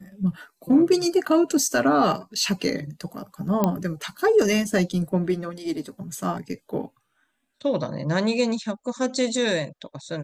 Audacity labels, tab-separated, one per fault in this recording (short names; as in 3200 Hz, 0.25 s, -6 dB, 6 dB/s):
3.640000	3.640000	pop -8 dBFS